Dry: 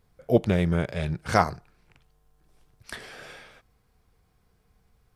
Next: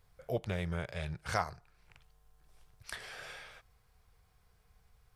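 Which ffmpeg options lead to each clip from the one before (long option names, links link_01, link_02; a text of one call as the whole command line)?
ffmpeg -i in.wav -af "equalizer=frequency=260:width_type=o:width=1.4:gain=-12.5,acompressor=threshold=-46dB:ratio=1.5" out.wav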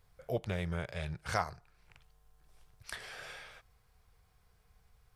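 ffmpeg -i in.wav -af anull out.wav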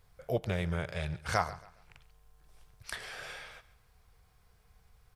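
ffmpeg -i in.wav -af "aecho=1:1:138|276|414:0.126|0.0403|0.0129,volume=3dB" out.wav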